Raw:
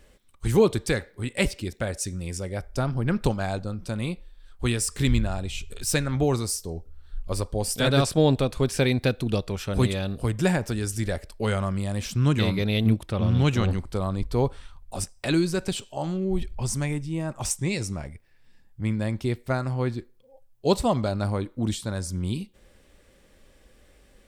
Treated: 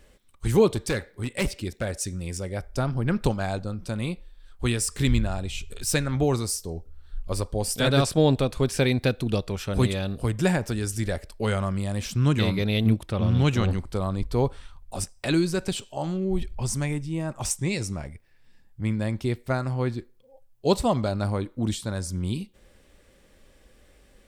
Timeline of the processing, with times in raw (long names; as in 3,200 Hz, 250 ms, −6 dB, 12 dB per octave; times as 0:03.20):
0:00.69–0:02.47: hard clipping −20.5 dBFS